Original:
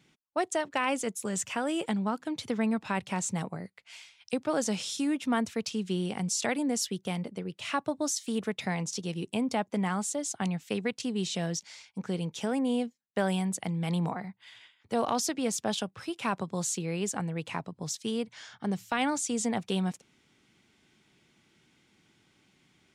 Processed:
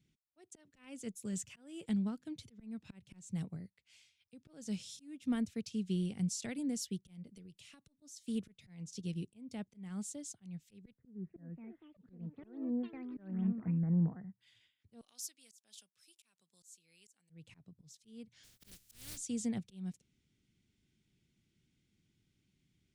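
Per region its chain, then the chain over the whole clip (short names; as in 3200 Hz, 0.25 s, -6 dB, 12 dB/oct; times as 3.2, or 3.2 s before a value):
7.29–8.02 HPF 110 Hz + high shelf 3000 Hz +9.5 dB + compressor 4:1, threshold -40 dBFS
10.94–14.41 steep low-pass 1900 Hz 96 dB/oct + echoes that change speed 0.32 s, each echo +5 st, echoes 3, each echo -6 dB
15.01–17.3 HPF 130 Hz + differentiator
18.43–19.16 spectral contrast lowered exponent 0.16 + hard clip -24 dBFS
whole clip: auto swell 0.307 s; passive tone stack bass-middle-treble 10-0-1; upward expander 1.5:1, over -58 dBFS; gain +15 dB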